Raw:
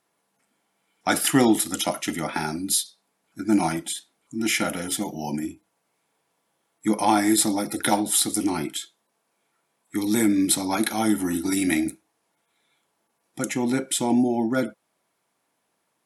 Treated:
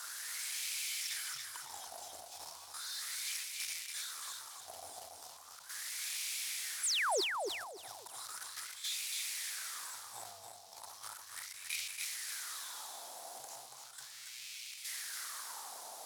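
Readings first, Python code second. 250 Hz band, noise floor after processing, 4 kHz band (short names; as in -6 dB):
-40.0 dB, -54 dBFS, -8.0 dB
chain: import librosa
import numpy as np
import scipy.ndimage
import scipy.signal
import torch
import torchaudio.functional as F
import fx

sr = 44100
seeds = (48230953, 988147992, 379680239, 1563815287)

y = x + 0.5 * 10.0 ** (-12.0 / 20.0) * np.diff(np.sign(x), prepend=np.sign(x[:1]))
y = scipy.signal.sosfilt(scipy.signal.cheby2(4, 80, [320.0, 1000.0], 'bandstop', fs=sr, output='sos'), y)
y = fx.low_shelf(y, sr, hz=150.0, db=11.0)
y = fx.leveller(y, sr, passes=1)
y = fx.auto_swell(y, sr, attack_ms=165.0)
y = fx.level_steps(y, sr, step_db=10)
y = fx.wah_lfo(y, sr, hz=0.36, low_hz=710.0, high_hz=2400.0, q=6.4)
y = fx.spec_paint(y, sr, seeds[0], shape='fall', start_s=6.83, length_s=0.38, low_hz=340.0, high_hz=11000.0, level_db=-41.0)
y = fx.echo_feedback(y, sr, ms=282, feedback_pct=26, wet_db=-4.5)
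y = fx.sustainer(y, sr, db_per_s=46.0)
y = y * 10.0 ** (8.0 / 20.0)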